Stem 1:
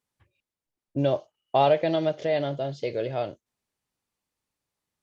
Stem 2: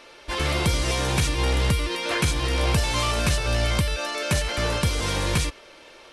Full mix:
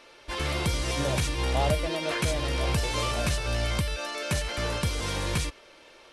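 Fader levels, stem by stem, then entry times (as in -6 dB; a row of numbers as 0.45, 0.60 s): -8.5, -5.0 dB; 0.00, 0.00 s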